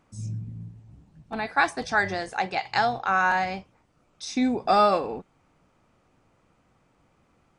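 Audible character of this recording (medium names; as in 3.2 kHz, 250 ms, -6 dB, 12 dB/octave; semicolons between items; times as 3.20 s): noise floor -66 dBFS; spectral tilt -3.0 dB/octave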